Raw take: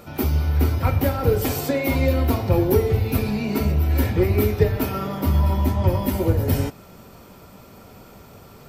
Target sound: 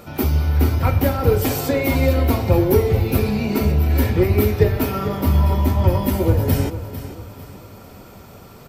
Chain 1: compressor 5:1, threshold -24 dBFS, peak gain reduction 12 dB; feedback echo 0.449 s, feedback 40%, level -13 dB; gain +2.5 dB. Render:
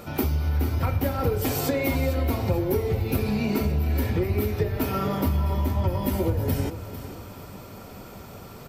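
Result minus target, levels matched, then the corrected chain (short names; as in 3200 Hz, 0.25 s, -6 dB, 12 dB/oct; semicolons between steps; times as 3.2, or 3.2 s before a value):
compressor: peak gain reduction +12 dB
feedback echo 0.449 s, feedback 40%, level -13 dB; gain +2.5 dB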